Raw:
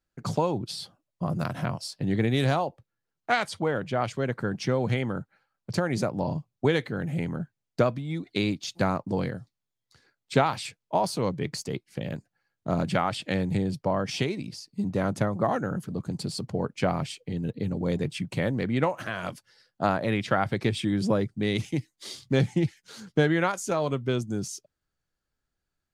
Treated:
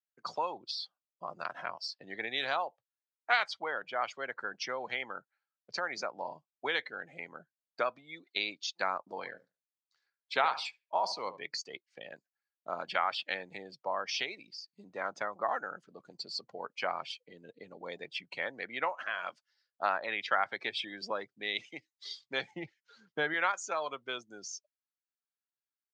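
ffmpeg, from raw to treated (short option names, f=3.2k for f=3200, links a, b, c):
-filter_complex "[0:a]asplit=3[a][b][c];[a]afade=t=out:st=9.09:d=0.02[d];[b]asplit=2[e][f];[f]adelay=73,lowpass=f=2k:p=1,volume=-12dB,asplit=2[g][h];[h]adelay=73,lowpass=f=2k:p=1,volume=0.29,asplit=2[i][j];[j]adelay=73,lowpass=f=2k:p=1,volume=0.29[k];[e][g][i][k]amix=inputs=4:normalize=0,afade=t=in:st=9.09:d=0.02,afade=t=out:st=11.41:d=0.02[l];[c]afade=t=in:st=11.41:d=0.02[m];[d][l][m]amix=inputs=3:normalize=0,asettb=1/sr,asplit=3[n][o][p];[n]atrim=end=22.514[q];[o]atrim=start=22.51:end=23.34,asetpts=PTS-STARTPTS,afade=t=in:d=0.004:c=qsin,afade=t=out:st=0.826:d=0.004:c=qsin,aemphasis=mode=reproduction:type=bsi[r];[p]atrim=start=23.336[s];[q][r]acrossfade=d=0.004:c1=hsin:c2=qsin[t];[t][s]acrossfade=d=0.004:c1=qsin:c2=hsin,lowpass=f=6.7k:w=0.5412,lowpass=f=6.7k:w=1.3066,afftdn=nr=16:nf=-41,highpass=980"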